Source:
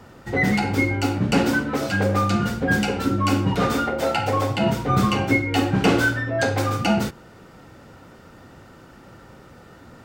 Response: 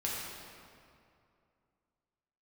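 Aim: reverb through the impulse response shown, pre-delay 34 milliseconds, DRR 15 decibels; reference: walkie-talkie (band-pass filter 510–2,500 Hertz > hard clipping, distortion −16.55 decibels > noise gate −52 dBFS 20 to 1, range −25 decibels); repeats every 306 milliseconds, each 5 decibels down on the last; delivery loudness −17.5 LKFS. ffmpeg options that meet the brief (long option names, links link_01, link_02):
-filter_complex "[0:a]aecho=1:1:306|612|918|1224|1530|1836|2142:0.562|0.315|0.176|0.0988|0.0553|0.031|0.0173,asplit=2[link_01][link_02];[1:a]atrim=start_sample=2205,adelay=34[link_03];[link_02][link_03]afir=irnorm=-1:irlink=0,volume=-20dB[link_04];[link_01][link_04]amix=inputs=2:normalize=0,highpass=510,lowpass=2500,asoftclip=type=hard:threshold=-18.5dB,agate=range=-25dB:threshold=-52dB:ratio=20,volume=7.5dB"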